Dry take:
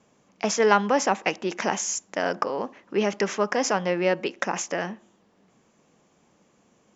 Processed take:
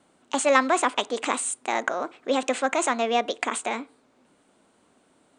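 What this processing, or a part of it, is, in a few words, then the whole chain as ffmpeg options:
nightcore: -af "asetrate=56889,aresample=44100"

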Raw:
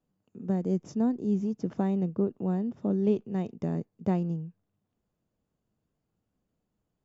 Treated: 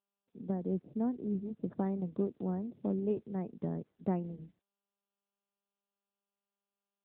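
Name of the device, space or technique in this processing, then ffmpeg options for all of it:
mobile call with aggressive noise cancelling: -filter_complex "[0:a]asettb=1/sr,asplit=3[link_01][link_02][link_03];[link_01]atrim=end=1.314[link_04];[link_02]atrim=start=1.31:end=1.79,asetpts=PTS-STARTPTS,afade=type=in:duration=0.004:curve=qsin,afade=type=out:start_time=0.476:duration=0.004:curve=qsin,asubboost=boost=11.5:cutoff=140[link_05];[link_03]atrim=start=1.786[link_06];[link_04][link_05]acrossfade=duration=0.004:curve1=hsin:curve2=qsin[link_07];[link_07][link_06]acrossfade=duration=0.004:curve1=qsin:curve2=hsin,highpass=frequency=140:poles=1,afftdn=noise_reduction=34:noise_floor=-50,volume=-3.5dB" -ar 8000 -c:a libopencore_amrnb -b:a 10200

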